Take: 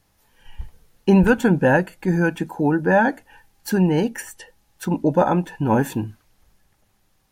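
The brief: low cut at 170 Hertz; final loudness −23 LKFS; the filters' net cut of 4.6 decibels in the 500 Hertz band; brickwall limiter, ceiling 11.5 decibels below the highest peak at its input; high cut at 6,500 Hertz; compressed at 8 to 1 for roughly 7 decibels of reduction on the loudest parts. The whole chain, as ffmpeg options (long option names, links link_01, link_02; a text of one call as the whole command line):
ffmpeg -i in.wav -af "highpass=170,lowpass=6500,equalizer=frequency=500:width_type=o:gain=-5.5,acompressor=threshold=-20dB:ratio=8,volume=10dB,alimiter=limit=-13dB:level=0:latency=1" out.wav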